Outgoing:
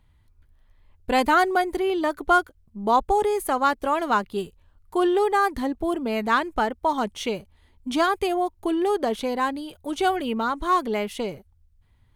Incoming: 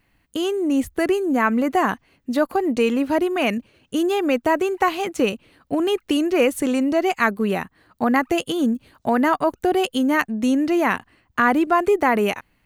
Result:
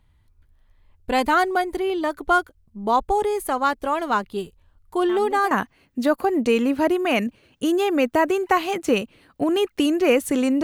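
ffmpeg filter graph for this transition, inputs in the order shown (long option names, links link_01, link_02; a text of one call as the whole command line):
ffmpeg -i cue0.wav -i cue1.wav -filter_complex "[1:a]asplit=2[link_01][link_02];[0:a]apad=whole_dur=10.63,atrim=end=10.63,atrim=end=5.512[link_03];[link_02]atrim=start=1.818:end=6.94[link_04];[link_01]atrim=start=1.4:end=1.82,asetpts=PTS-STARTPTS,volume=-16.5dB,afade=type=in:duration=0.004:curve=hsin,afade=type=out:start_time=0.416:duration=0.004:curve=hsin,adelay=224469S[link_05];[link_03][link_04]acrossfade=duration=0.004:curve1=hsin:curve2=hsin[link_06];[link_06][link_05]amix=inputs=2:normalize=0" out.wav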